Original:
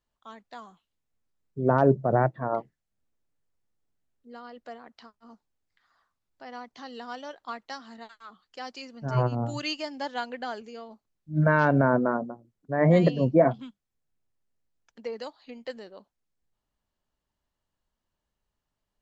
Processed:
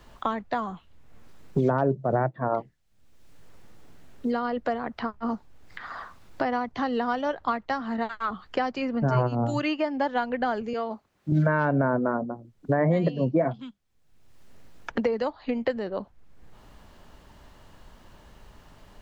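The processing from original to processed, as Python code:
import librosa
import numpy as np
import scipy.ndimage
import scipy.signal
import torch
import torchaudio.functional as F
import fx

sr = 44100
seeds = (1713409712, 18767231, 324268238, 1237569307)

y = fx.highpass(x, sr, hz=460.0, slope=6, at=(10.73, 11.32))
y = fx.high_shelf(y, sr, hz=4500.0, db=-11.0)
y = fx.band_squash(y, sr, depth_pct=100)
y = y * librosa.db_to_amplitude(3.0)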